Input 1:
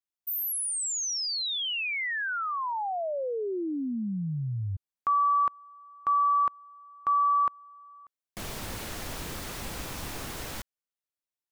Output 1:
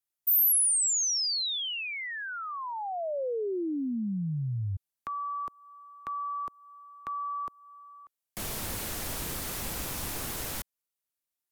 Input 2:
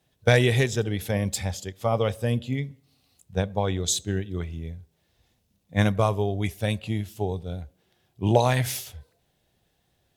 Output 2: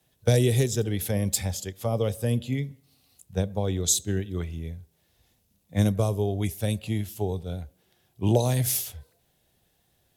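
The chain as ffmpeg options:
ffmpeg -i in.wav -filter_complex "[0:a]equalizer=frequency=13000:width_type=o:width=1.2:gain=8.5,acrossover=split=400|540|3900[link_01][link_02][link_03][link_04];[link_03]acompressor=threshold=-36dB:ratio=6:attack=3.3:release=261:detection=rms[link_05];[link_01][link_02][link_05][link_04]amix=inputs=4:normalize=0" out.wav

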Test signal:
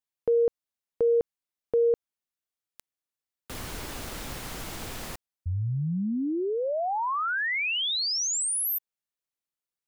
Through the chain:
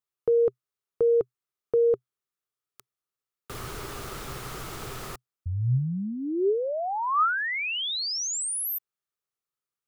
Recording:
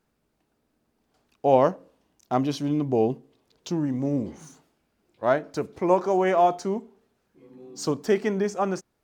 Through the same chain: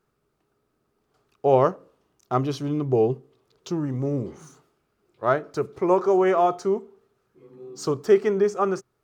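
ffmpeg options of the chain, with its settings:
ffmpeg -i in.wav -af "equalizer=frequency=125:width_type=o:width=0.33:gain=9,equalizer=frequency=250:width_type=o:width=0.33:gain=-4,equalizer=frequency=400:width_type=o:width=0.33:gain=9,equalizer=frequency=1250:width_type=o:width=0.33:gain=10,volume=-2dB" out.wav

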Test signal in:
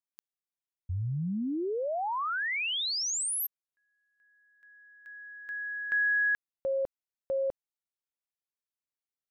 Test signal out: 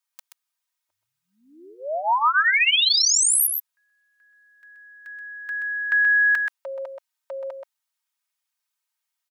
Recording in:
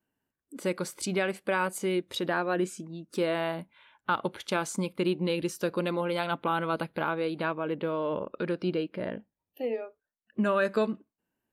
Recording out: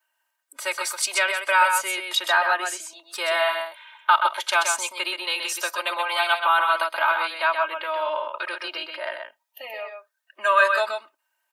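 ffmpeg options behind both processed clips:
ffmpeg -i in.wav -af "highpass=frequency=800:width=0.5412,highpass=frequency=800:width=1.3066,aecho=1:1:3.2:0.93,aecho=1:1:128:0.531,volume=9dB" out.wav

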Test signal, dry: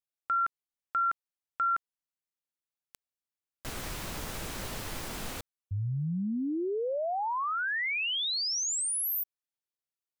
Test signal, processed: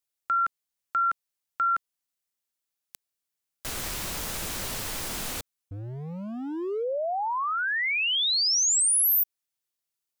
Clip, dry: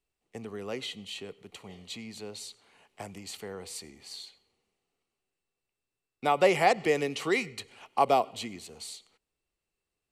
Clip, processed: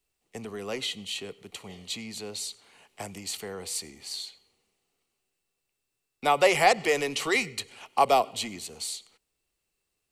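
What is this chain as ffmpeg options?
ffmpeg -i in.wav -filter_complex "[0:a]highshelf=frequency=3400:gain=7,acrossover=split=400|2900[link_01][link_02][link_03];[link_01]asoftclip=type=hard:threshold=-38dB[link_04];[link_04][link_02][link_03]amix=inputs=3:normalize=0,volume=2.5dB" out.wav

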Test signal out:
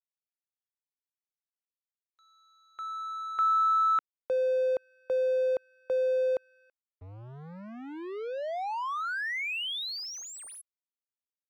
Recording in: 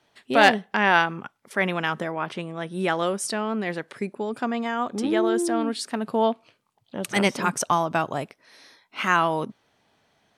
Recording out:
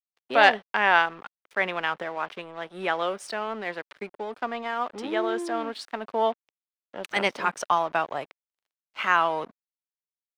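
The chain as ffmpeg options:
ffmpeg -i in.wav -filter_complex "[0:a]aeval=exprs='sgn(val(0))*max(abs(val(0))-0.00794,0)':channel_layout=same,acrossover=split=410 4600:gain=0.224 1 0.2[link_01][link_02][link_03];[link_01][link_02][link_03]amix=inputs=3:normalize=0" out.wav

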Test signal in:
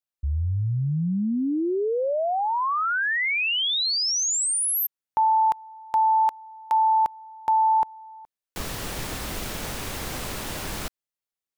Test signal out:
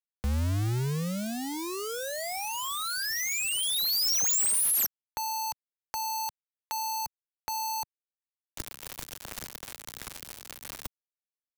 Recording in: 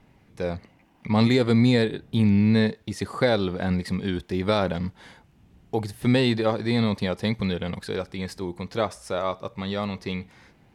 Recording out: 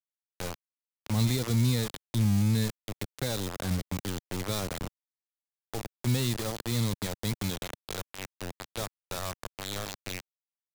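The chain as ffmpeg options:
ffmpeg -i in.wav -filter_complex "[0:a]aeval=exprs='val(0)*gte(abs(val(0)),0.0668)':channel_layout=same,acrossover=split=150|4400[link_01][link_02][link_03];[link_02]acompressor=threshold=-39dB:ratio=3:attack=3.6:release=28:knee=2.83:detection=peak[link_04];[link_01][link_04][link_03]amix=inputs=3:normalize=0" out.wav

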